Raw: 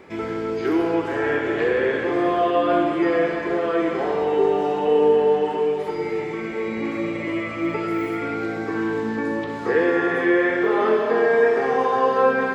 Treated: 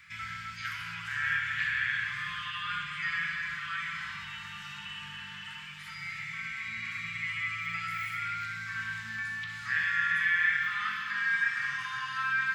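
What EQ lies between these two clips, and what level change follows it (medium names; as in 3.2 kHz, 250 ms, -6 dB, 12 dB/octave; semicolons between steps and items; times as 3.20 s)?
inverse Chebyshev band-stop 310–690 Hz, stop band 60 dB; bass shelf 250 Hz -10 dB; 0.0 dB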